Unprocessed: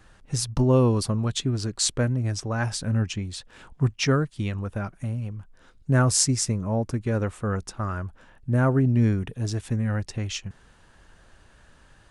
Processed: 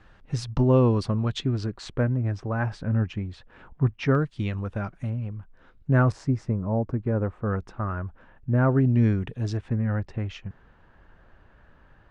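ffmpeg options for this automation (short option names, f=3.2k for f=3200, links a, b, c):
-af "asetnsamples=n=441:p=0,asendcmd='1.66 lowpass f 1900;4.15 lowpass f 4300;5.1 lowpass f 2500;6.12 lowpass f 1200;7.46 lowpass f 2100;8.69 lowpass f 4000;9.57 lowpass f 1900',lowpass=3.4k"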